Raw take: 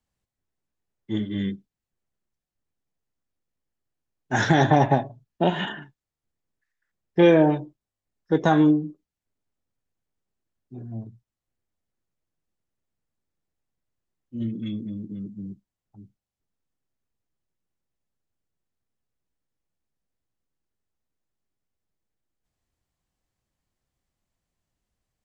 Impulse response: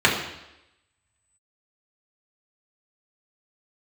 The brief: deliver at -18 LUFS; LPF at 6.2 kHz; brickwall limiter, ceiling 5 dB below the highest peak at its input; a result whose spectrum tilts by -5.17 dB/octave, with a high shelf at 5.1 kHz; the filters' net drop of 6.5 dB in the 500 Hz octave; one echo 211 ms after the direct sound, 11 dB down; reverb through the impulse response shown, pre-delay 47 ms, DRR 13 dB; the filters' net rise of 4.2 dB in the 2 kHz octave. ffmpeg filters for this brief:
-filter_complex "[0:a]lowpass=6200,equalizer=f=500:t=o:g=-9,equalizer=f=2000:t=o:g=7,highshelf=f=5100:g=-7.5,alimiter=limit=0.237:level=0:latency=1,aecho=1:1:211:0.282,asplit=2[s0][s1];[1:a]atrim=start_sample=2205,adelay=47[s2];[s1][s2]afir=irnorm=-1:irlink=0,volume=0.02[s3];[s0][s3]amix=inputs=2:normalize=0,volume=2.66"

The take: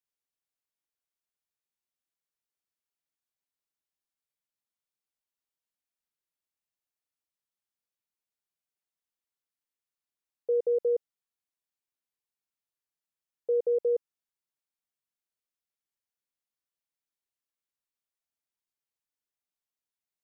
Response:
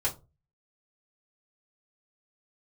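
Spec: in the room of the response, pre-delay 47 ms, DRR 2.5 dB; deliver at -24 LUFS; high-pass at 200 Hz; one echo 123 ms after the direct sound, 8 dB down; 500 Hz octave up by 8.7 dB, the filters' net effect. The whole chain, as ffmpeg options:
-filter_complex "[0:a]highpass=200,equalizer=f=500:t=o:g=9,aecho=1:1:123:0.398,asplit=2[s0][s1];[1:a]atrim=start_sample=2205,adelay=47[s2];[s1][s2]afir=irnorm=-1:irlink=0,volume=0.335[s3];[s0][s3]amix=inputs=2:normalize=0,volume=0.596"

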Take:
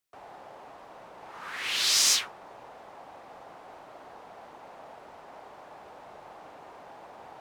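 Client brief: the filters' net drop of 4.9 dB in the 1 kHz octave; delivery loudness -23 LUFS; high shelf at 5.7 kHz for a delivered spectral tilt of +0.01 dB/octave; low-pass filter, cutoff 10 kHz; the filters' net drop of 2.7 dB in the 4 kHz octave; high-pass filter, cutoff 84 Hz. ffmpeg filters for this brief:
-af "highpass=84,lowpass=10000,equalizer=f=1000:t=o:g=-6.5,equalizer=f=4000:t=o:g=-6,highshelf=f=5700:g=6,volume=1.19"

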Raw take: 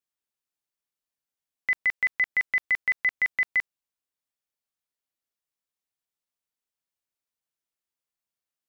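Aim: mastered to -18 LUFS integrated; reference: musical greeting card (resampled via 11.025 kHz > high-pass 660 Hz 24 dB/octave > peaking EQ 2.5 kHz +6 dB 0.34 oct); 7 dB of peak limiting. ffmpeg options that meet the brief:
-af "alimiter=level_in=1.12:limit=0.0631:level=0:latency=1,volume=0.891,aresample=11025,aresample=44100,highpass=f=660:w=0.5412,highpass=f=660:w=1.3066,equalizer=f=2500:t=o:w=0.34:g=6,volume=4.22"

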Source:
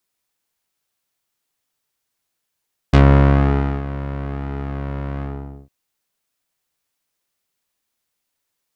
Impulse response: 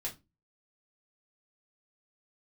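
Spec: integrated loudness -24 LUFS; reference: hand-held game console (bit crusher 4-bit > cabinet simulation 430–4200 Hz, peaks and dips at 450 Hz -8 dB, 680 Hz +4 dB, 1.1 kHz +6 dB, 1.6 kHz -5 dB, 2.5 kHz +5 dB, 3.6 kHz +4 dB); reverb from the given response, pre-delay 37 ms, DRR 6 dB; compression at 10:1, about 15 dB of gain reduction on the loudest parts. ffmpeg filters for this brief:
-filter_complex "[0:a]acompressor=threshold=0.0708:ratio=10,asplit=2[s0][s1];[1:a]atrim=start_sample=2205,adelay=37[s2];[s1][s2]afir=irnorm=-1:irlink=0,volume=0.473[s3];[s0][s3]amix=inputs=2:normalize=0,acrusher=bits=3:mix=0:aa=0.000001,highpass=430,equalizer=f=450:t=q:w=4:g=-8,equalizer=f=680:t=q:w=4:g=4,equalizer=f=1100:t=q:w=4:g=6,equalizer=f=1600:t=q:w=4:g=-5,equalizer=f=2500:t=q:w=4:g=5,equalizer=f=3600:t=q:w=4:g=4,lowpass=f=4200:w=0.5412,lowpass=f=4200:w=1.3066,volume=1.5"

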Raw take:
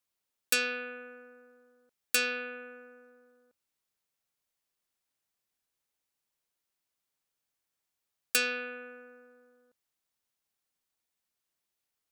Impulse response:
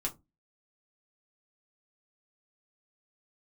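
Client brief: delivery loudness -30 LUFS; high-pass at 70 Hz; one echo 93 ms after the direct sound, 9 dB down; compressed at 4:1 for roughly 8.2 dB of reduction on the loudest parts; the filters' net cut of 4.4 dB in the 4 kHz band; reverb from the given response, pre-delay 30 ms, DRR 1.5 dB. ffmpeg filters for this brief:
-filter_complex "[0:a]highpass=70,equalizer=f=4000:t=o:g=-5.5,acompressor=threshold=0.0178:ratio=4,aecho=1:1:93:0.355,asplit=2[s0][s1];[1:a]atrim=start_sample=2205,adelay=30[s2];[s1][s2]afir=irnorm=-1:irlink=0,volume=0.668[s3];[s0][s3]amix=inputs=2:normalize=0,volume=2.51"

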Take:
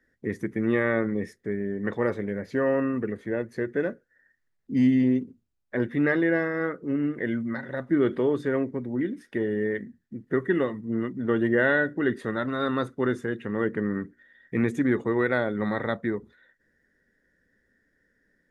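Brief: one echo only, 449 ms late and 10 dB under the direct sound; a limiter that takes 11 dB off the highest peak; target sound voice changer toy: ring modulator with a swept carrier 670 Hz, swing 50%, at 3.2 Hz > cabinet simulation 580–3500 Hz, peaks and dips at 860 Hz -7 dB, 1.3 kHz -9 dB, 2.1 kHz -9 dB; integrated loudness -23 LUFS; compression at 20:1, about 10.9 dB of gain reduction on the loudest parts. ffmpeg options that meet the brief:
-af "acompressor=threshold=0.0398:ratio=20,alimiter=level_in=1.68:limit=0.0631:level=0:latency=1,volume=0.596,aecho=1:1:449:0.316,aeval=exprs='val(0)*sin(2*PI*670*n/s+670*0.5/3.2*sin(2*PI*3.2*n/s))':c=same,highpass=580,equalizer=f=860:t=q:w=4:g=-7,equalizer=f=1300:t=q:w=4:g=-9,equalizer=f=2100:t=q:w=4:g=-9,lowpass=f=3500:w=0.5412,lowpass=f=3500:w=1.3066,volume=16.8"

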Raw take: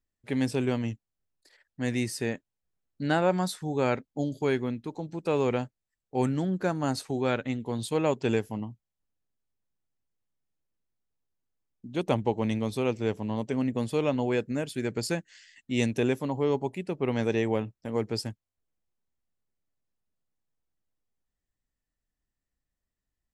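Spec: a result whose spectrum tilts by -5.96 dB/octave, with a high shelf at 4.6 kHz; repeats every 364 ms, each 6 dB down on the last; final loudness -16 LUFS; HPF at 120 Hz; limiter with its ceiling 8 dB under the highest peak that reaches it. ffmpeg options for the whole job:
-af "highpass=120,highshelf=f=4600:g=-5,alimiter=limit=0.119:level=0:latency=1,aecho=1:1:364|728|1092|1456|1820|2184:0.501|0.251|0.125|0.0626|0.0313|0.0157,volume=5.62"

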